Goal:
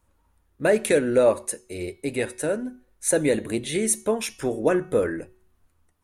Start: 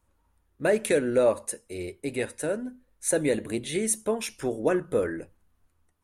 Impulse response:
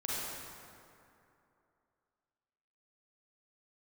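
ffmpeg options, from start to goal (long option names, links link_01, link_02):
-af "bandreject=frequency=371:width_type=h:width=4,bandreject=frequency=742:width_type=h:width=4,bandreject=frequency=1113:width_type=h:width=4,bandreject=frequency=1484:width_type=h:width=4,bandreject=frequency=1855:width_type=h:width=4,bandreject=frequency=2226:width_type=h:width=4,bandreject=frequency=2597:width_type=h:width=4,bandreject=frequency=2968:width_type=h:width=4,bandreject=frequency=3339:width_type=h:width=4,bandreject=frequency=3710:width_type=h:width=4,bandreject=frequency=4081:width_type=h:width=4,bandreject=frequency=4452:width_type=h:width=4,bandreject=frequency=4823:width_type=h:width=4,bandreject=frequency=5194:width_type=h:width=4,bandreject=frequency=5565:width_type=h:width=4,bandreject=frequency=5936:width_type=h:width=4,bandreject=frequency=6307:width_type=h:width=4,bandreject=frequency=6678:width_type=h:width=4,bandreject=frequency=7049:width_type=h:width=4,volume=3.5dB"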